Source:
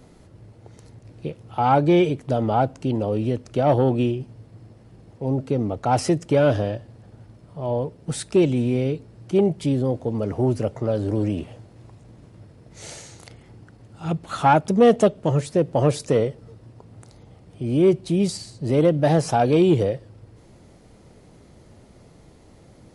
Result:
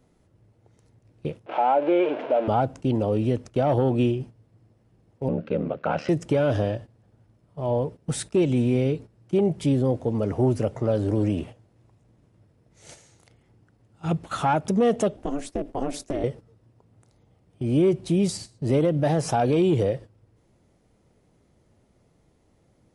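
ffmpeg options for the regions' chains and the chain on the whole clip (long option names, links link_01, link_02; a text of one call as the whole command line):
ffmpeg -i in.wav -filter_complex "[0:a]asettb=1/sr,asplit=3[link_01][link_02][link_03];[link_01]atrim=end=1.464[link_04];[link_02]atrim=start=1.46:end=2.48,asetpts=PTS-STARTPTS,afade=type=in:duration=0.004:curve=qsin,afade=type=out:start_time=1.016:duration=0.004:curve=qsin,aeval=exprs='val(0)+0.5*0.0794*sgn(val(0))':channel_layout=same,highpass=frequency=330:width=0.5412,highpass=frequency=330:width=1.3066,equalizer=frequency=400:width_type=q:width=4:gain=-6,equalizer=frequency=600:width_type=q:width=4:gain=7,equalizer=frequency=1200:width_type=q:width=4:gain=-8,equalizer=frequency=1900:width_type=q:width=4:gain=-9,lowpass=frequency=2600:width=0.5412,lowpass=frequency=2600:width=1.3066[link_05];[link_03]atrim=start=2.476[link_06];[link_04][link_05]acrossfade=duration=0.004:curve1=hsin:curve2=qsin[link_07];[link_07][link_06]acrossfade=duration=0.004:curve1=qsin:curve2=hsin,asettb=1/sr,asplit=3[link_08][link_09][link_10];[link_08]atrim=end=5.284[link_11];[link_09]atrim=start=5.28:end=6.09,asetpts=PTS-STARTPTS,afade=type=in:duration=0.004:curve=qsin,afade=type=out:start_time=0.806:duration=0.004:curve=qsin,aeval=exprs='val(0)*sin(2*PI*37*n/s)':channel_layout=same,highpass=160,equalizer=frequency=170:width_type=q:width=4:gain=4,equalizer=frequency=320:width_type=q:width=4:gain=-5,equalizer=frequency=540:width_type=q:width=4:gain=8,equalizer=frequency=830:width_type=q:width=4:gain=-5,equalizer=frequency=1500:width_type=q:width=4:gain=10,equalizer=frequency=2600:width_type=q:width=4:gain=7,lowpass=frequency=4100:width=0.5412,lowpass=frequency=4100:width=1.3066[link_12];[link_10]atrim=start=6.086[link_13];[link_11][link_12]acrossfade=duration=0.004:curve1=hsin:curve2=qsin[link_14];[link_14][link_13]acrossfade=duration=0.004:curve1=qsin:curve2=hsin,asettb=1/sr,asplit=3[link_15][link_16][link_17];[link_15]atrim=end=15.164[link_18];[link_16]atrim=start=15.16:end=16.24,asetpts=PTS-STARTPTS,afade=type=in:duration=0.004:curve=qsin,afade=type=out:start_time=1.076:duration=0.004:curve=qsin,acompressor=threshold=-20dB:ratio=8:attack=3.2:release=140:knee=1:detection=peak,aeval=exprs='val(0)*sin(2*PI*140*n/s)':channel_layout=same[link_19];[link_17]atrim=start=16.236[link_20];[link_18][link_19]acrossfade=duration=0.004:curve1=hsin:curve2=qsin[link_21];[link_21][link_20]acrossfade=duration=0.004:curve1=qsin:curve2=hsin,agate=range=-13dB:threshold=-36dB:ratio=16:detection=peak,equalizer=frequency=4400:width_type=o:width=0.32:gain=-3.5,alimiter=limit=-13dB:level=0:latency=1:release=83" out.wav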